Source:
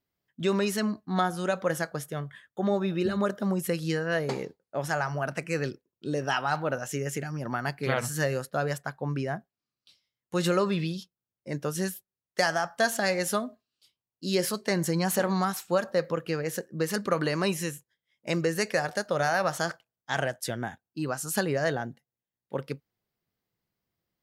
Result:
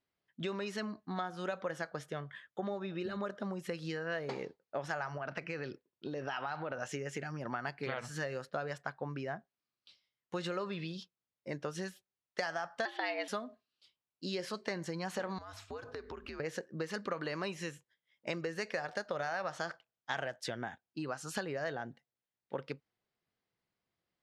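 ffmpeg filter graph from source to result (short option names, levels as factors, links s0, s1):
-filter_complex "[0:a]asettb=1/sr,asplit=3[s0][s1][s2];[s0]atrim=end=5.174[s3];[s1]atrim=start=5.17:end=6.8,asetpts=PTS-STARTPTS,afade=t=in:d=0.004:c=qsin,afade=t=out:st=1.626:d=0.004:c=qsin,lowpass=f=5700:w=0.5412,lowpass=f=5700:w=1.3066,acompressor=threshold=0.0316:ratio=6:attack=3.2:release=140:knee=1:detection=peak[s4];[s2]atrim=start=6.796[s5];[s3][s4]acrossfade=d=0.004:c1=hsin:c2=qsin[s6];[s6][s5]acrossfade=d=0.004:c1=qsin:c2=hsin,asettb=1/sr,asplit=3[s7][s8][s9];[s7]atrim=end=12.854[s10];[s8]atrim=start=12.85:end=13.28,asetpts=PTS-STARTPTS,afade=t=in:d=0.004:c=qsin,afade=t=out:st=0.426:d=0.004:c=qsin,highshelf=f=4900:t=q:w=3:g=-13,afreqshift=120[s11];[s9]atrim=start=13.276[s12];[s10][s11]acrossfade=d=0.004:c1=hsin:c2=qsin[s13];[s13][s12]acrossfade=d=0.004:c1=qsin:c2=hsin,asettb=1/sr,asplit=3[s14][s15][s16];[s14]atrim=end=15.384[s17];[s15]atrim=start=15.38:end=16.4,asetpts=PTS-STARTPTS,afade=t=in:d=0.004:c=qsin,afade=t=out:st=1.016:d=0.004:c=qsin,afreqshift=-99,bandreject=f=50:t=h:w=6,bandreject=f=100:t=h:w=6,bandreject=f=150:t=h:w=6,bandreject=f=200:t=h:w=6,bandreject=f=250:t=h:w=6,acompressor=threshold=0.0141:ratio=16:attack=3.2:release=140:knee=1:detection=peak[s18];[s16]atrim=start=16.396[s19];[s17][s18]acrossfade=d=0.004:c1=hsin:c2=qsin[s20];[s20][s19]acrossfade=d=0.004:c1=qsin:c2=hsin,lowpass=4500,acompressor=threshold=0.0251:ratio=6,lowshelf=f=280:g=-8"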